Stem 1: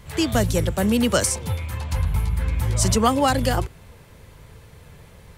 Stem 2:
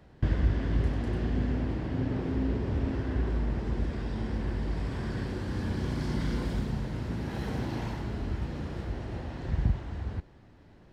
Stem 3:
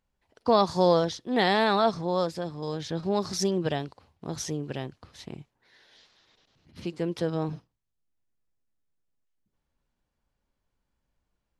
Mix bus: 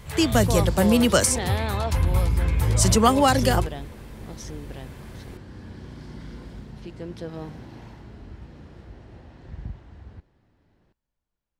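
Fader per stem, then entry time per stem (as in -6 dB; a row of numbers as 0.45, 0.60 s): +1.0, -9.0, -7.0 dB; 0.00, 0.00, 0.00 s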